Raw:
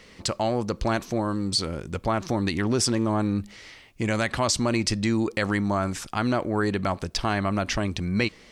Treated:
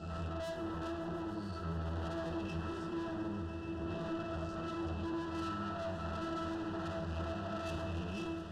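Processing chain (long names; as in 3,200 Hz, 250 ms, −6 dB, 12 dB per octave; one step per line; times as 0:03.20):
peak hold with a rise ahead of every peak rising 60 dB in 0.95 s
downward compressor 4 to 1, threshold −27 dBFS, peak gain reduction 10 dB
resonances in every octave E, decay 0.45 s
tube saturation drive 55 dB, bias 0.4
Butterworth band-reject 2,200 Hz, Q 3
echo that builds up and dies away 142 ms, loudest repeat 5, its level −15 dB
on a send at −7 dB: convolution reverb RT60 1.7 s, pre-delay 32 ms
on the sum: level +16 dB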